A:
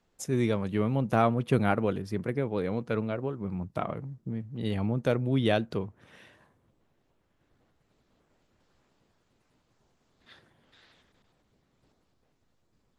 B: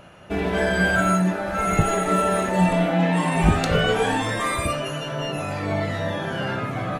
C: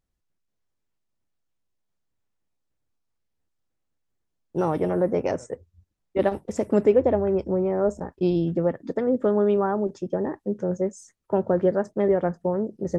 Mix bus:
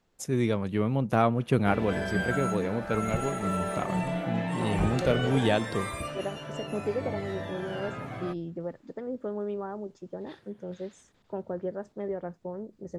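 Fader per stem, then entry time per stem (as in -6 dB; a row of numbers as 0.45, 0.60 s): +0.5, -11.0, -12.5 dB; 0.00, 1.35, 0.00 s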